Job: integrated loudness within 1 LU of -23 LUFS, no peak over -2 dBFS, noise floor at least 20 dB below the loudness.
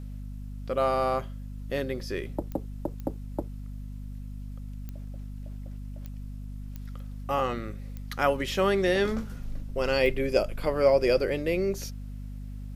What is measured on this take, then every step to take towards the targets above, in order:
clicks 7; hum 50 Hz; harmonics up to 250 Hz; hum level -35 dBFS; loudness -28.0 LUFS; peak -10.0 dBFS; loudness target -23.0 LUFS
-> de-click; de-hum 50 Hz, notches 5; gain +5 dB

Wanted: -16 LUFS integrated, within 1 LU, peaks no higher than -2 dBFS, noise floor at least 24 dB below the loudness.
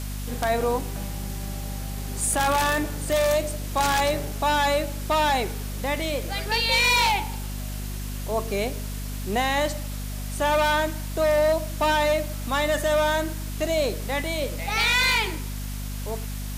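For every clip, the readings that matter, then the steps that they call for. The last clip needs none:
hum 50 Hz; harmonics up to 250 Hz; hum level -29 dBFS; noise floor -32 dBFS; noise floor target -49 dBFS; loudness -24.5 LUFS; peak -12.0 dBFS; loudness target -16.0 LUFS
-> de-hum 50 Hz, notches 5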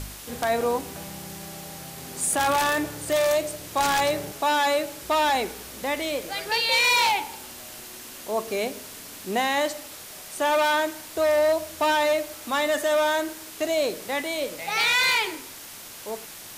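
hum none; noise floor -42 dBFS; noise floor target -48 dBFS
-> denoiser 6 dB, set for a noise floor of -42 dBFS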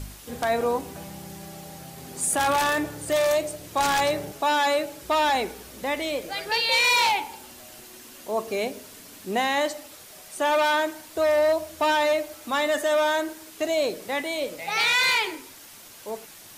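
noise floor -46 dBFS; noise floor target -48 dBFS
-> denoiser 6 dB, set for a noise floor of -46 dBFS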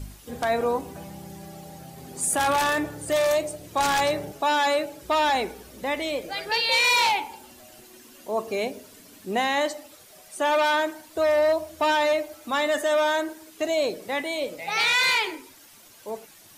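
noise floor -51 dBFS; loudness -24.0 LUFS; peak -13.5 dBFS; loudness target -16.0 LUFS
-> gain +8 dB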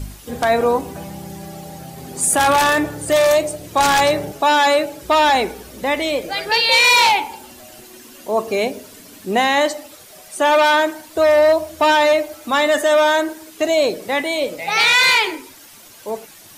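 loudness -16.0 LUFS; peak -5.5 dBFS; noise floor -43 dBFS

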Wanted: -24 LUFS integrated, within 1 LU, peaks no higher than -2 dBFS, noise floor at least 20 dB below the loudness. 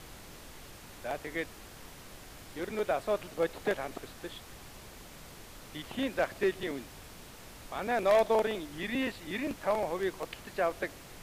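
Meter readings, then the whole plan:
noise floor -50 dBFS; noise floor target -53 dBFS; loudness -33.0 LUFS; peak -17.5 dBFS; loudness target -24.0 LUFS
-> noise print and reduce 6 dB; gain +9 dB

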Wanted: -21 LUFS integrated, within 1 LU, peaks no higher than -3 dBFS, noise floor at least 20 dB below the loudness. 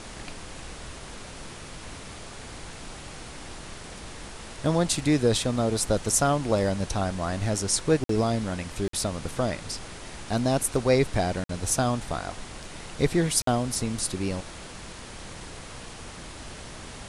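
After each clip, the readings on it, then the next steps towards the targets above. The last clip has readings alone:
dropouts 4; longest dropout 53 ms; noise floor -42 dBFS; noise floor target -46 dBFS; loudness -26.0 LUFS; peak -8.5 dBFS; loudness target -21.0 LUFS
-> interpolate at 8.04/8.88/11.44/13.42, 53 ms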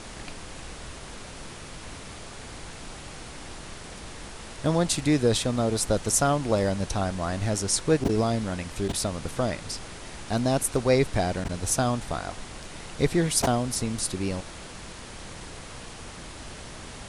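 dropouts 0; noise floor -42 dBFS; noise floor target -46 dBFS
-> noise print and reduce 6 dB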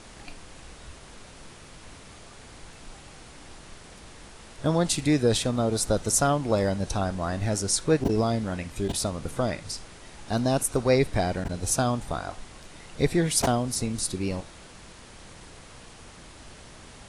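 noise floor -48 dBFS; loudness -26.0 LUFS; peak -8.5 dBFS; loudness target -21.0 LUFS
-> gain +5 dB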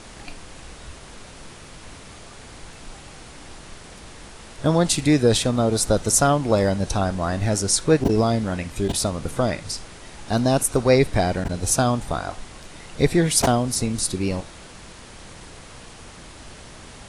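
loudness -21.0 LUFS; peak -3.5 dBFS; noise floor -43 dBFS

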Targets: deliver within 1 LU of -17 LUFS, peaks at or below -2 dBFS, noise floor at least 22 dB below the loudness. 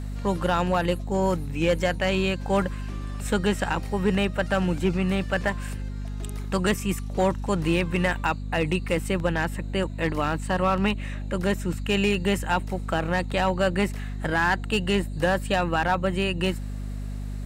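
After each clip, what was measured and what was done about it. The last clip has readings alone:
clipped 0.5%; flat tops at -14.5 dBFS; hum 50 Hz; harmonics up to 250 Hz; hum level -29 dBFS; loudness -25.5 LUFS; peak -14.5 dBFS; loudness target -17.0 LUFS
-> clip repair -14.5 dBFS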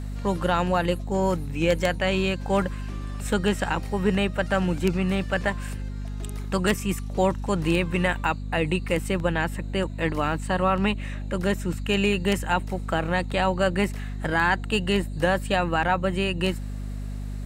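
clipped 0.0%; hum 50 Hz; harmonics up to 250 Hz; hum level -29 dBFS
-> notches 50/100/150/200/250 Hz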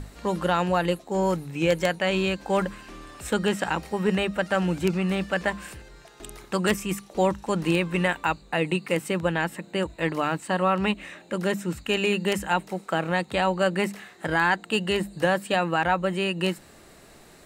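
hum none; loudness -25.5 LUFS; peak -5.5 dBFS; loudness target -17.0 LUFS
-> gain +8.5 dB; limiter -2 dBFS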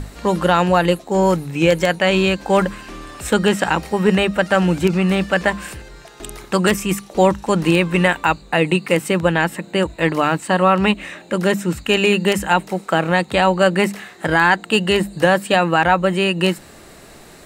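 loudness -17.5 LUFS; peak -2.0 dBFS; noise floor -43 dBFS

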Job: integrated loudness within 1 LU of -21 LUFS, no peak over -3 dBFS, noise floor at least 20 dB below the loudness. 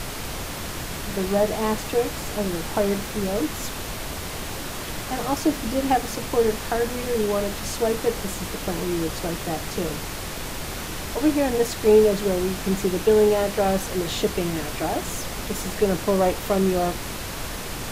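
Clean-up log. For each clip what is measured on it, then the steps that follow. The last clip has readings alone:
noise floor -32 dBFS; noise floor target -45 dBFS; loudness -24.5 LUFS; peak -6.0 dBFS; loudness target -21.0 LUFS
-> noise print and reduce 13 dB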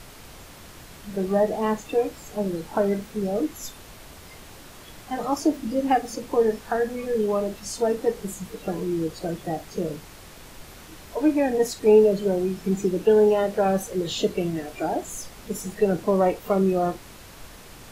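noise floor -45 dBFS; loudness -24.5 LUFS; peak -7.0 dBFS; loudness target -21.0 LUFS
-> gain +3.5 dB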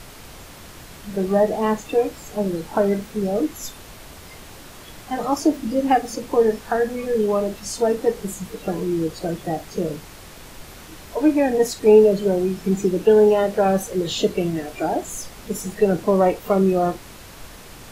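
loudness -21.0 LUFS; peak -3.5 dBFS; noise floor -42 dBFS

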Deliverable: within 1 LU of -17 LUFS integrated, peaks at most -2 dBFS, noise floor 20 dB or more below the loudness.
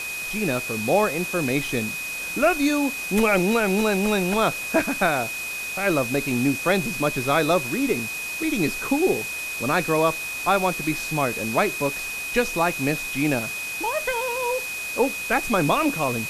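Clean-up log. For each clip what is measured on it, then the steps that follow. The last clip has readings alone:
steady tone 2500 Hz; tone level -29 dBFS; noise floor -31 dBFS; noise floor target -43 dBFS; loudness -23.0 LUFS; peak -7.5 dBFS; loudness target -17.0 LUFS
-> notch 2500 Hz, Q 30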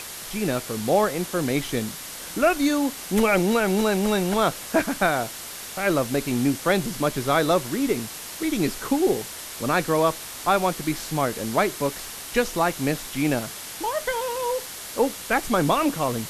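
steady tone none; noise floor -37 dBFS; noise floor target -44 dBFS
-> noise print and reduce 7 dB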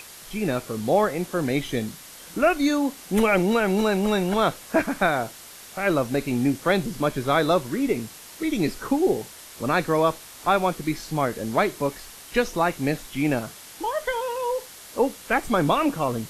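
noise floor -44 dBFS; loudness -24.0 LUFS; peak -8.0 dBFS; loudness target -17.0 LUFS
-> gain +7 dB; limiter -2 dBFS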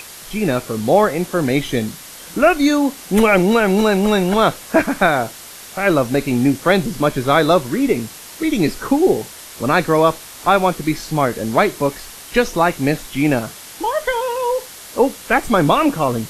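loudness -17.0 LUFS; peak -2.0 dBFS; noise floor -37 dBFS

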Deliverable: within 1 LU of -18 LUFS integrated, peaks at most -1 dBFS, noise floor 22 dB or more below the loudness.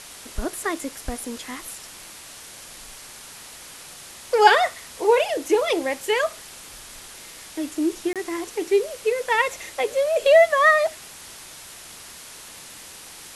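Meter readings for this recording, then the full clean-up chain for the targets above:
dropouts 1; longest dropout 27 ms; noise floor -42 dBFS; noise floor target -44 dBFS; loudness -21.5 LUFS; peak -1.5 dBFS; loudness target -18.0 LUFS
-> interpolate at 8.13, 27 ms; denoiser 6 dB, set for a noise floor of -42 dBFS; gain +3.5 dB; limiter -1 dBFS

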